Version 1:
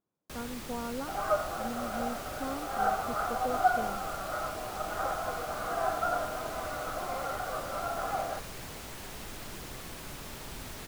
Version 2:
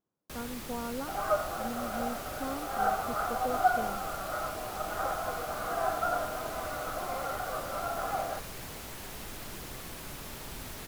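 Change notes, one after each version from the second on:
first sound: add bell 12000 Hz +5 dB 0.32 oct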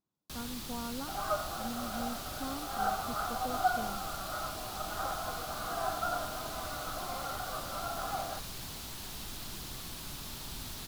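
master: add ten-band EQ 500 Hz -8 dB, 2000 Hz -6 dB, 4000 Hz +6 dB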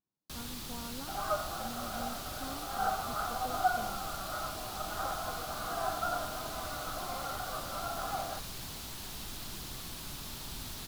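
speech -5.0 dB

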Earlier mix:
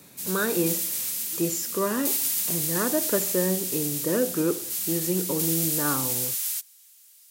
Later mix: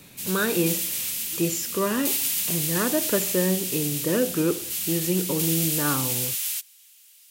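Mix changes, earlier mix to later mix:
speech: remove HPF 190 Hz 6 dB/oct; master: add bell 2800 Hz +8 dB 0.93 oct

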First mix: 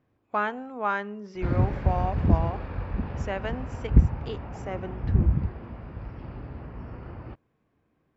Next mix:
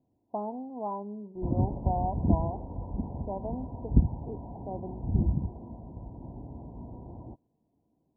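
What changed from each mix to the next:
master: add rippled Chebyshev low-pass 1000 Hz, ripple 6 dB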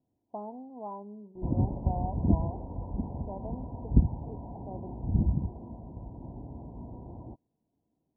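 speech -5.5 dB

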